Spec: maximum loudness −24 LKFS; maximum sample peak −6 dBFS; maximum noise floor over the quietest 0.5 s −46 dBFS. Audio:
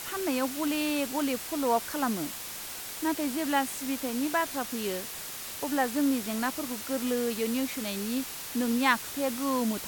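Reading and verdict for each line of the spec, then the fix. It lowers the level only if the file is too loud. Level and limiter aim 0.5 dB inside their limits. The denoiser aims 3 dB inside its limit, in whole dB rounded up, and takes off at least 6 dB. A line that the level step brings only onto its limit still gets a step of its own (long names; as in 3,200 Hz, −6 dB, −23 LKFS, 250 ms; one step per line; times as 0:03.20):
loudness −30.0 LKFS: in spec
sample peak −9.5 dBFS: in spec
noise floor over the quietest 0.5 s −39 dBFS: out of spec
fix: broadband denoise 10 dB, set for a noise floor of −39 dBFS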